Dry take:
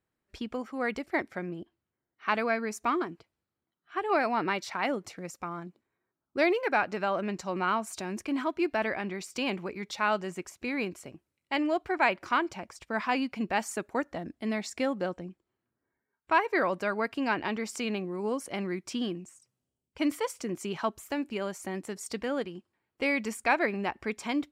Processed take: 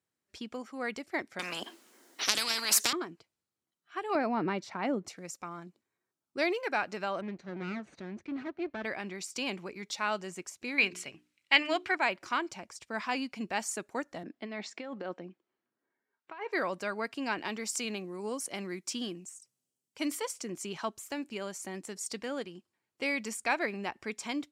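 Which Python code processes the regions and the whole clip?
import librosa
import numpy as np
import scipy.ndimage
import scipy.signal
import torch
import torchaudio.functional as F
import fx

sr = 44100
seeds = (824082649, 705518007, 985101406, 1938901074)

y = fx.chain(x, sr, fx.steep_highpass(hz=230.0, slope=36),
    fx.transient(attack_db=8, sustain_db=4),
    fx.spectral_comp(ratio=10.0), at=(1.39, 2.93))
y = fx.chain(y, sr, fx.highpass(hz=140.0, slope=12),
    fx.tilt_eq(slope=-4.0), at=(4.15, 5.08))
y = fx.chain(y, sr, fx.lower_of_two(delay_ms=0.48),
    fx.highpass(hz=44.0, slope=12),
    fx.spacing_loss(db_at_10k=34), at=(7.21, 8.85))
y = fx.chain(y, sr, fx.peak_eq(hz=2500.0, db=14.0, octaves=2.1),
    fx.hum_notches(base_hz=60, count=7), at=(10.78, 11.95))
y = fx.chain(y, sr, fx.over_compress(threshold_db=-33.0, ratio=-1.0),
    fx.bandpass_edges(low_hz=230.0, high_hz=3000.0), at=(14.23, 16.52))
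y = fx.chain(y, sr, fx.highpass(hz=130.0, slope=12),
    fx.high_shelf(hz=7300.0, db=7.0), at=(17.38, 20.22))
y = scipy.signal.sosfilt(scipy.signal.butter(2, 98.0, 'highpass', fs=sr, output='sos'), y)
y = fx.peak_eq(y, sr, hz=6900.0, db=9.0, octaves=2.0)
y = F.gain(torch.from_numpy(y), -5.5).numpy()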